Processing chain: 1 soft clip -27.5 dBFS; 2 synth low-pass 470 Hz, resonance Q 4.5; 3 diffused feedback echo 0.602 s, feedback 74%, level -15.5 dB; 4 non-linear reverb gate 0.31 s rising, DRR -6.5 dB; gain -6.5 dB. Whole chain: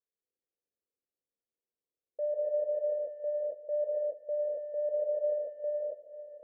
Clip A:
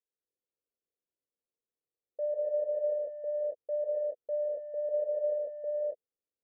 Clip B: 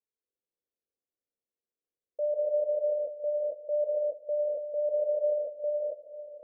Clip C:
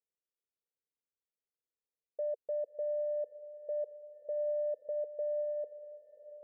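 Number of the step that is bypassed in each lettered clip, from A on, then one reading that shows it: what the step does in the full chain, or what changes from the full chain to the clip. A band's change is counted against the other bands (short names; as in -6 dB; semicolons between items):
3, momentary loudness spread change -2 LU; 1, distortion -19 dB; 4, momentary loudness spread change +9 LU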